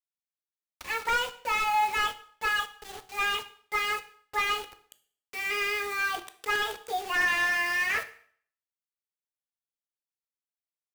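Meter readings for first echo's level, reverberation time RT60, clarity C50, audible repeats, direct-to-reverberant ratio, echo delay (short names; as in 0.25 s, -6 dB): none, 0.55 s, 15.5 dB, none, 10.5 dB, none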